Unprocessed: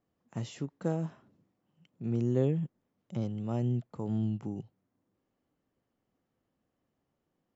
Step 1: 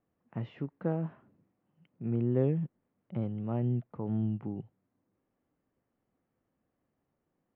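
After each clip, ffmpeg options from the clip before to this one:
ffmpeg -i in.wav -af "lowpass=frequency=2500:width=0.5412,lowpass=frequency=2500:width=1.3066" out.wav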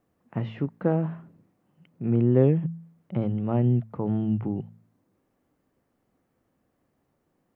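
ffmpeg -i in.wav -af "bandreject=frequency=55.32:width_type=h:width=4,bandreject=frequency=110.64:width_type=h:width=4,bandreject=frequency=165.96:width_type=h:width=4,bandreject=frequency=221.28:width_type=h:width=4,volume=8.5dB" out.wav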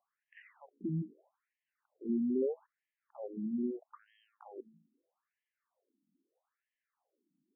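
ffmpeg -i in.wav -af "asoftclip=type=tanh:threshold=-14.5dB,afftfilt=real='re*between(b*sr/1024,230*pow(2400/230,0.5+0.5*sin(2*PI*0.78*pts/sr))/1.41,230*pow(2400/230,0.5+0.5*sin(2*PI*0.78*pts/sr))*1.41)':imag='im*between(b*sr/1024,230*pow(2400/230,0.5+0.5*sin(2*PI*0.78*pts/sr))/1.41,230*pow(2400/230,0.5+0.5*sin(2*PI*0.78*pts/sr))*1.41)':win_size=1024:overlap=0.75,volume=-5dB" out.wav

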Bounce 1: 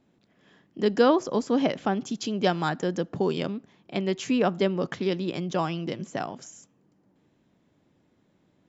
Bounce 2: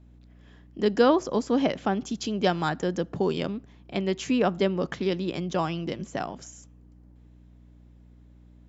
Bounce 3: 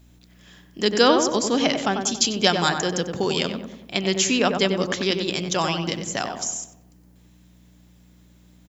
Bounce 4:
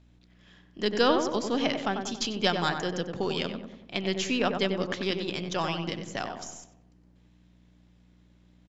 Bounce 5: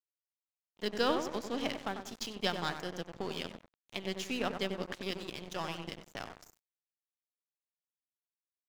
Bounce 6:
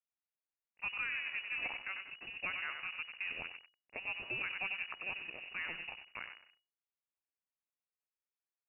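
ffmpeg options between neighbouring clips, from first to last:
ffmpeg -i in.wav -af "aeval=exprs='val(0)+0.00282*(sin(2*PI*60*n/s)+sin(2*PI*2*60*n/s)/2+sin(2*PI*3*60*n/s)/3+sin(2*PI*4*60*n/s)/4+sin(2*PI*5*60*n/s)/5)':channel_layout=same" out.wav
ffmpeg -i in.wav -filter_complex "[0:a]crystalizer=i=8.5:c=0,asplit=2[link_01][link_02];[link_02]adelay=94,lowpass=frequency=1500:poles=1,volume=-5dB,asplit=2[link_03][link_04];[link_04]adelay=94,lowpass=frequency=1500:poles=1,volume=0.54,asplit=2[link_05][link_06];[link_06]adelay=94,lowpass=frequency=1500:poles=1,volume=0.54,asplit=2[link_07][link_08];[link_08]adelay=94,lowpass=frequency=1500:poles=1,volume=0.54,asplit=2[link_09][link_10];[link_10]adelay=94,lowpass=frequency=1500:poles=1,volume=0.54,asplit=2[link_11][link_12];[link_12]adelay=94,lowpass=frequency=1500:poles=1,volume=0.54,asplit=2[link_13][link_14];[link_14]adelay=94,lowpass=frequency=1500:poles=1,volume=0.54[link_15];[link_03][link_05][link_07][link_09][link_11][link_13][link_15]amix=inputs=7:normalize=0[link_16];[link_01][link_16]amix=inputs=2:normalize=0" out.wav
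ffmpeg -i in.wav -af "aeval=exprs='if(lt(val(0),0),0.708*val(0),val(0))':channel_layout=same,lowpass=4300,volume=-5dB" out.wav
ffmpeg -i in.wav -af "aeval=exprs='sgn(val(0))*max(abs(val(0))-0.015,0)':channel_layout=same,volume=-6dB" out.wav
ffmpeg -i in.wav -af "lowpass=frequency=2500:width_type=q:width=0.5098,lowpass=frequency=2500:width_type=q:width=0.6013,lowpass=frequency=2500:width_type=q:width=0.9,lowpass=frequency=2500:width_type=q:width=2.563,afreqshift=-2900,alimiter=level_in=2dB:limit=-24dB:level=0:latency=1:release=54,volume=-2dB,volume=-2.5dB" out.wav

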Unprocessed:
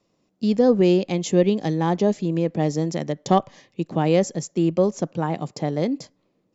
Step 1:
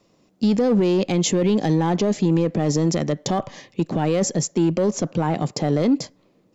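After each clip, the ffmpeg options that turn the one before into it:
ffmpeg -i in.wav -filter_complex "[0:a]asplit=2[link_01][link_02];[link_02]asoftclip=type=hard:threshold=-21dB,volume=-3.5dB[link_03];[link_01][link_03]amix=inputs=2:normalize=0,alimiter=limit=-16dB:level=0:latency=1:release=24,volume=4dB" out.wav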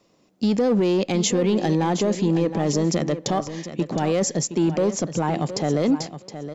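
ffmpeg -i in.wav -af "lowshelf=frequency=180:gain=-5.5,aecho=1:1:718|1436:0.266|0.0426" out.wav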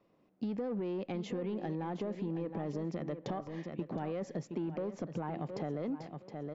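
ffmpeg -i in.wav -af "lowpass=2200,acompressor=threshold=-26dB:ratio=6,volume=-8dB" out.wav

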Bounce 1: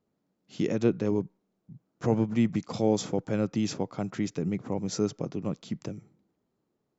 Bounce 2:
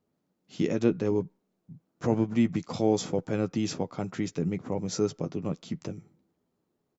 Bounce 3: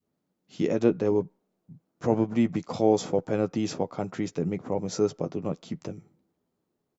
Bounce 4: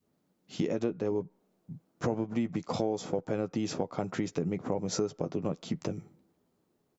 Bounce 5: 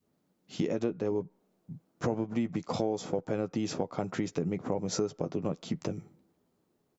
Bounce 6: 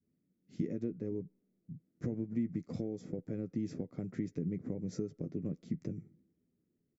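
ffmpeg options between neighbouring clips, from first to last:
ffmpeg -i in.wav -filter_complex "[0:a]asplit=2[link_01][link_02];[link_02]adelay=12,volume=-9.5dB[link_03];[link_01][link_03]amix=inputs=2:normalize=0" out.wav
ffmpeg -i in.wav -af "adynamicequalizer=threshold=0.0126:dfrequency=640:dqfactor=0.71:tfrequency=640:tqfactor=0.71:attack=5:release=100:ratio=0.375:range=3.5:mode=boostabove:tftype=bell,volume=-1.5dB" out.wav
ffmpeg -i in.wav -af "acompressor=threshold=-32dB:ratio=6,volume=4.5dB" out.wav
ffmpeg -i in.wav -af anull out.wav
ffmpeg -i in.wav -af "firequalizer=gain_entry='entry(250,0);entry(870,-25);entry(2000,-8);entry(2900,-21);entry(5000,-15)':delay=0.05:min_phase=1,volume=-3dB" out.wav

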